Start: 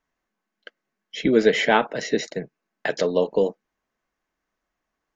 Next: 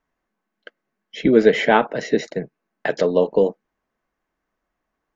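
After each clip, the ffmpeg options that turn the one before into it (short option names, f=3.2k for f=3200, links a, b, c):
-af "highshelf=f=2.7k:g=-9.5,volume=4dB"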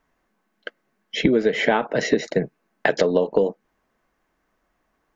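-af "acompressor=threshold=-22dB:ratio=16,volume=7.5dB"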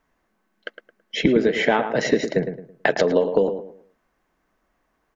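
-filter_complex "[0:a]asplit=2[a][b];[b]adelay=109,lowpass=f=1.7k:p=1,volume=-8dB,asplit=2[c][d];[d]adelay=109,lowpass=f=1.7k:p=1,volume=0.32,asplit=2[e][f];[f]adelay=109,lowpass=f=1.7k:p=1,volume=0.32,asplit=2[g][h];[h]adelay=109,lowpass=f=1.7k:p=1,volume=0.32[i];[a][c][e][g][i]amix=inputs=5:normalize=0"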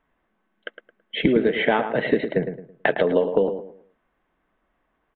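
-af "aresample=8000,aresample=44100,volume=-1dB"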